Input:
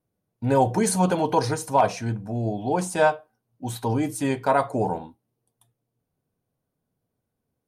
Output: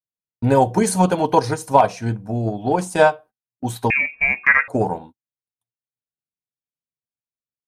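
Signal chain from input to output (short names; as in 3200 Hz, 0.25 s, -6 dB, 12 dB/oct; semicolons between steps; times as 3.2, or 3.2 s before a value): 3.9–4.68 inverted band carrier 2600 Hz; transient shaper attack +5 dB, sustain -4 dB; gate -42 dBFS, range -31 dB; gain +3 dB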